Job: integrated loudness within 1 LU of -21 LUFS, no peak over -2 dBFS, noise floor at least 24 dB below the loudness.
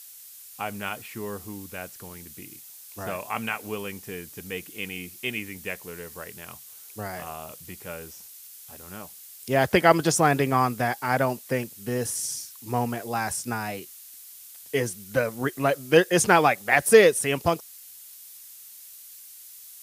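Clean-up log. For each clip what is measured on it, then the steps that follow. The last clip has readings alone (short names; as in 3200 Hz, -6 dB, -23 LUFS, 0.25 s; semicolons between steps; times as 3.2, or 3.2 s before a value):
noise floor -46 dBFS; noise floor target -49 dBFS; loudness -24.5 LUFS; peak -3.5 dBFS; loudness target -21.0 LUFS
-> denoiser 6 dB, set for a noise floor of -46 dBFS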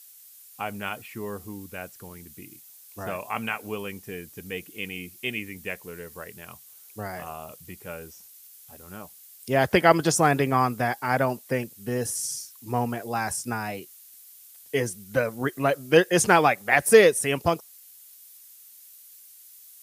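noise floor -50 dBFS; loudness -24.5 LUFS; peak -3.5 dBFS; loudness target -21.0 LUFS
-> gain +3.5 dB; limiter -2 dBFS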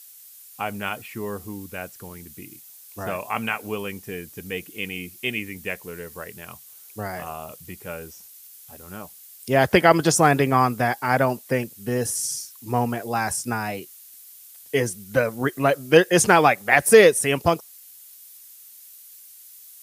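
loudness -21.5 LUFS; peak -2.0 dBFS; noise floor -47 dBFS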